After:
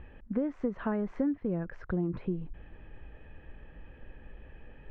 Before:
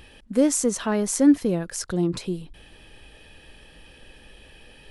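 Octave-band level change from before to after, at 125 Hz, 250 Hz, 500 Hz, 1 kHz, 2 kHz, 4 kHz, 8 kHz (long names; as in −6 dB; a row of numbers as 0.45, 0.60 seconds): −5.5 dB, −10.5 dB, −10.0 dB, −8.5 dB, −9.0 dB, below −25 dB, below −40 dB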